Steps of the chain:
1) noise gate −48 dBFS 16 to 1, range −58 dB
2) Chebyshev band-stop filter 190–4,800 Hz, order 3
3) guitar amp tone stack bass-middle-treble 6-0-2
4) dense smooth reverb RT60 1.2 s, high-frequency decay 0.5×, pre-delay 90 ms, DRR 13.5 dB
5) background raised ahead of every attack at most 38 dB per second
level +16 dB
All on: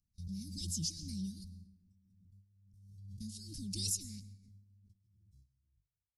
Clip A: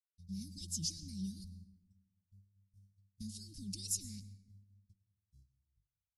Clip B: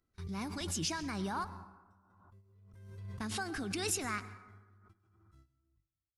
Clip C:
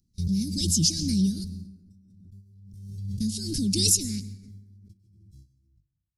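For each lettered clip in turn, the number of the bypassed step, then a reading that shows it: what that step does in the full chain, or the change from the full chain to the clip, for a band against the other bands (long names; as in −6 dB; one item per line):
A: 5, change in crest factor +2.5 dB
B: 2, 2 kHz band +27.5 dB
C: 3, 500 Hz band +8.0 dB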